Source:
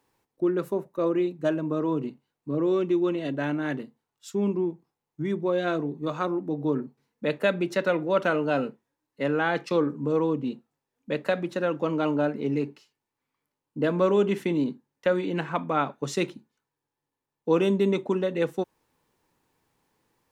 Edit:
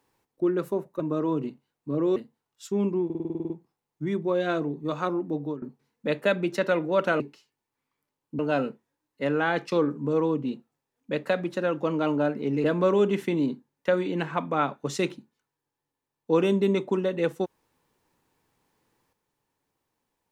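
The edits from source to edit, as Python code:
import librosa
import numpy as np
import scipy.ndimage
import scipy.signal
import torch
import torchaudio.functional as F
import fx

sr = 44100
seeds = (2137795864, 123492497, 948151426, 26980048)

y = fx.edit(x, sr, fx.cut(start_s=1.0, length_s=0.6),
    fx.cut(start_s=2.76, length_s=1.03),
    fx.stutter(start_s=4.68, slice_s=0.05, count=10),
    fx.fade_out_to(start_s=6.55, length_s=0.25, floor_db=-21.0),
    fx.move(start_s=12.63, length_s=1.19, to_s=8.38), tone=tone)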